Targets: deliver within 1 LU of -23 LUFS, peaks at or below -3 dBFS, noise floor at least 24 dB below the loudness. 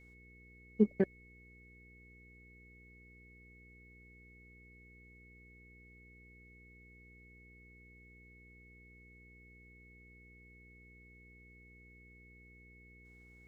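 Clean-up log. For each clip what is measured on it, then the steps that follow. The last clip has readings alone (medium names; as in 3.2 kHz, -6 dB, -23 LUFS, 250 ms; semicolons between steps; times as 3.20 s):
hum 60 Hz; highest harmonic 480 Hz; hum level -58 dBFS; steady tone 2.2 kHz; tone level -60 dBFS; loudness -33.5 LUFS; peak level -15.5 dBFS; loudness target -23.0 LUFS
-> de-hum 60 Hz, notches 8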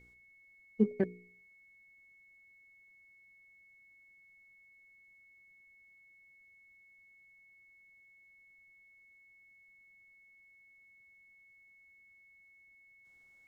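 hum not found; steady tone 2.2 kHz; tone level -60 dBFS
-> band-stop 2.2 kHz, Q 30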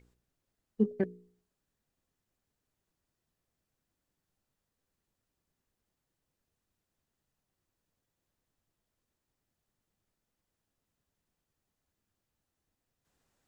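steady tone not found; loudness -33.0 LUFS; peak level -16.5 dBFS; loudness target -23.0 LUFS
-> trim +10 dB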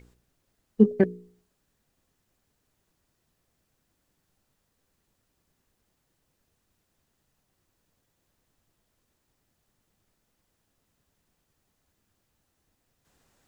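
loudness -23.0 LUFS; peak level -6.5 dBFS; noise floor -76 dBFS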